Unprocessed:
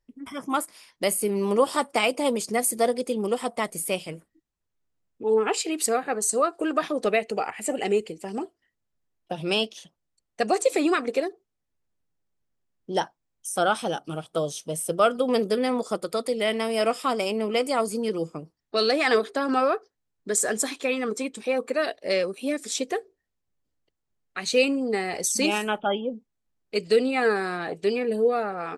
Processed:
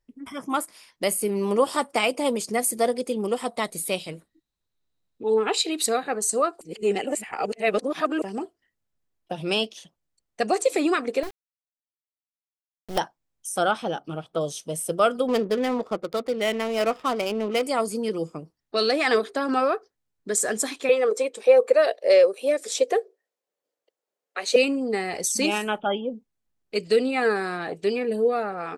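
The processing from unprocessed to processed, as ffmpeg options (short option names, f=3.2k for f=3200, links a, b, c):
-filter_complex "[0:a]asettb=1/sr,asplit=3[a][b][c];[a]atrim=end=3.484[d];[b]atrim=start=3.48:end=6.08,asetpts=PTS-STARTPTS,afade=t=in:d=0.004:c=qsin,afade=t=out:st=2.596:d=0.004:c=qsin,equalizer=f=3.9k:w=6.4:g=14[e];[c]atrim=start=6.076[f];[d][e]acrossfade=d=0.004:c1=hsin:c2=qsin[g];[g][f]acrossfade=d=0.004:c1=qsin:c2=hsin,asettb=1/sr,asplit=3[h][i][j];[h]atrim=end=11.234[k];[i]atrim=start=11.23:end=12.98,asetpts=PTS-STARTPTS,afade=t=in:d=0.004:c=qsin,afade=t=out:st=1.746:d=0.004:c=qsin,acrusher=bits=4:dc=4:mix=0:aa=0.000001[l];[j]atrim=start=12.976[m];[k][l]acrossfade=d=0.004:c1=hsin:c2=qsin[n];[n][m]acrossfade=d=0.004:c1=qsin:c2=hsin,asettb=1/sr,asplit=3[o][p][q];[o]atrim=end=13.714[r];[p]atrim=start=13.71:end=14.41,asetpts=PTS-STARTPTS,afade=t=in:d=0.004:c=qsin,afade=t=out:st=0.696:d=0.004:c=qsin,equalizer=f=9.4k:w=0.73:g=-13.5[s];[q]atrim=start=14.406[t];[r][s]acrossfade=d=0.004:c1=hsin:c2=qsin[u];[u][t]acrossfade=d=0.004:c1=qsin:c2=hsin,asettb=1/sr,asplit=3[v][w][x];[v]atrim=end=15.274[y];[w]atrim=start=15.27:end=17.63,asetpts=PTS-STARTPTS,afade=t=in:d=0.004:c=qsin,afade=t=out:st=2.356:d=0.004:c=qsin,adynamicsmooth=sensitivity=7.5:basefreq=740[z];[x]atrim=start=17.626[aa];[y][z]acrossfade=d=0.004:c1=hsin:c2=qsin[ab];[ab][aa]acrossfade=d=0.004:c1=qsin:c2=hsin,asettb=1/sr,asplit=3[ac][ad][ae];[ac]atrim=end=20.894[af];[ad]atrim=start=20.89:end=24.56,asetpts=PTS-STARTPTS,afade=t=in:d=0.004:c=qsin,afade=t=out:st=3.666:d=0.004:c=qsin,highpass=f=500:t=q:w=3.5[ag];[ae]atrim=start=24.556[ah];[af][ag]acrossfade=d=0.004:c1=hsin:c2=qsin[ai];[ai][ah]acrossfade=d=0.004:c1=qsin:c2=hsin,asplit=3[aj][ak][al];[aj]atrim=end=6.612[am];[ak]atrim=start=6.608:end=8.222,asetpts=PTS-STARTPTS,areverse[an];[al]atrim=start=8.218[ao];[am][an]acrossfade=d=0.004:c1=hsin:c2=hsin[ap];[ap][ao]acrossfade=d=0.004:c1=hsin:c2=hsin"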